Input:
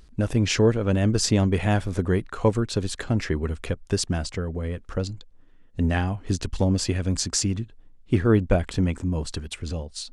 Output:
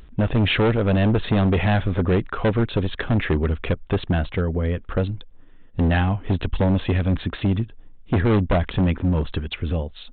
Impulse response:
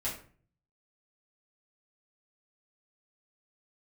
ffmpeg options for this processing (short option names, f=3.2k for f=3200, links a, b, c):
-af "acontrast=67,aresample=8000,asoftclip=type=hard:threshold=-15dB,aresample=44100"